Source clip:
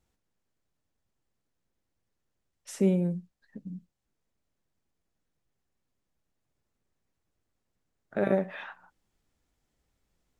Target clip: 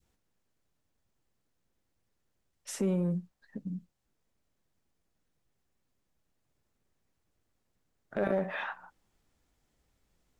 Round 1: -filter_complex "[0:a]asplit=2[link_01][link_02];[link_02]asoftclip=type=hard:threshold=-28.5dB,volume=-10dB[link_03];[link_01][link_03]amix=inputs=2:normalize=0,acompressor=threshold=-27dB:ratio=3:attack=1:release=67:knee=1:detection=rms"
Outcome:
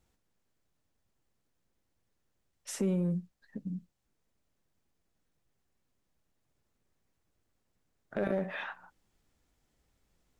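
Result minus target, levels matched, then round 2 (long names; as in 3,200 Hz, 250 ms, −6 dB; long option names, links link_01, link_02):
1,000 Hz band −3.0 dB
-filter_complex "[0:a]asplit=2[link_01][link_02];[link_02]asoftclip=type=hard:threshold=-28.5dB,volume=-10dB[link_03];[link_01][link_03]amix=inputs=2:normalize=0,acompressor=threshold=-27dB:ratio=3:attack=1:release=67:knee=1:detection=rms,adynamicequalizer=threshold=0.00501:dfrequency=930:dqfactor=0.82:tfrequency=930:tqfactor=0.82:attack=5:release=100:ratio=0.4:range=2.5:mode=boostabove:tftype=bell"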